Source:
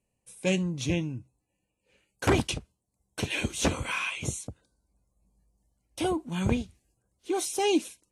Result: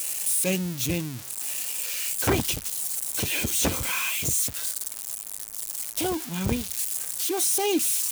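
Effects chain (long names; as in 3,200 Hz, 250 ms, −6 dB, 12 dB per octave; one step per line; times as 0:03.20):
spike at every zero crossing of −20 dBFS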